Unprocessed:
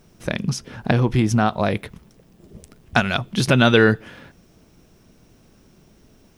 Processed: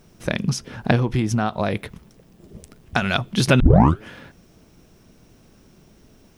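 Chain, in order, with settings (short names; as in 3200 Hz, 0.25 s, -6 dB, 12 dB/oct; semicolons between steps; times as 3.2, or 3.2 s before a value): 0.95–3.02 compressor 2.5:1, threshold -20 dBFS, peak gain reduction 6.5 dB; 3.6 tape start 0.41 s; gain +1 dB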